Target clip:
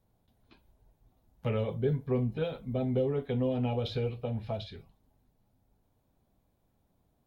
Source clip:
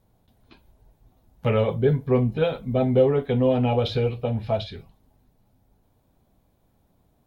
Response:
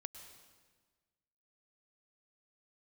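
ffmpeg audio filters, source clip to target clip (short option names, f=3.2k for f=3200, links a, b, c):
-filter_complex "[0:a]acrossover=split=450|3000[a][b][c];[b]acompressor=threshold=-28dB:ratio=6[d];[a][d][c]amix=inputs=3:normalize=0,volume=-8dB"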